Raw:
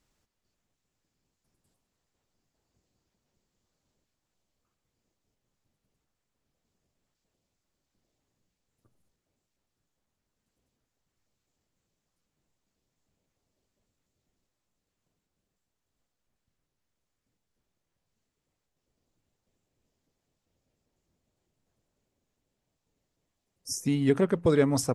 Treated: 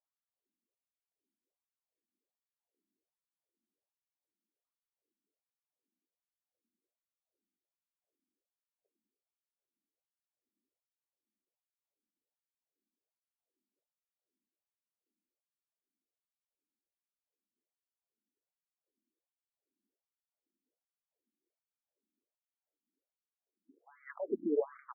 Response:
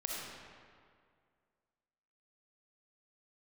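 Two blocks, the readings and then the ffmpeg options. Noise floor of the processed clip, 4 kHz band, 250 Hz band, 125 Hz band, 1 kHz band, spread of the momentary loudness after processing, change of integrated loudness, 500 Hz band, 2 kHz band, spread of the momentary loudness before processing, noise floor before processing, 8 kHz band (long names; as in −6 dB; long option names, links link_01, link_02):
below −85 dBFS, below −35 dB, −14.5 dB, −34.0 dB, −12.0 dB, 13 LU, −10.0 dB, −10.0 dB, −15.5 dB, 9 LU, −84 dBFS, below −35 dB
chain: -filter_complex "[0:a]adynamicsmooth=sensitivity=5.5:basefreq=670,highshelf=frequency=3400:gain=-11,asplit=2[link_01][link_02];[link_02]asplit=6[link_03][link_04][link_05][link_06][link_07][link_08];[link_03]adelay=101,afreqshift=-51,volume=-15.5dB[link_09];[link_04]adelay=202,afreqshift=-102,volume=-20.2dB[link_10];[link_05]adelay=303,afreqshift=-153,volume=-25dB[link_11];[link_06]adelay=404,afreqshift=-204,volume=-29.7dB[link_12];[link_07]adelay=505,afreqshift=-255,volume=-34.4dB[link_13];[link_08]adelay=606,afreqshift=-306,volume=-39.2dB[link_14];[link_09][link_10][link_11][link_12][link_13][link_14]amix=inputs=6:normalize=0[link_15];[link_01][link_15]amix=inputs=2:normalize=0,afftfilt=real='re*between(b*sr/1024,250*pow(1700/250,0.5+0.5*sin(2*PI*1.3*pts/sr))/1.41,250*pow(1700/250,0.5+0.5*sin(2*PI*1.3*pts/sr))*1.41)':imag='im*between(b*sr/1024,250*pow(1700/250,0.5+0.5*sin(2*PI*1.3*pts/sr))/1.41,250*pow(1700/250,0.5+0.5*sin(2*PI*1.3*pts/sr))*1.41)':win_size=1024:overlap=0.75,volume=-5dB"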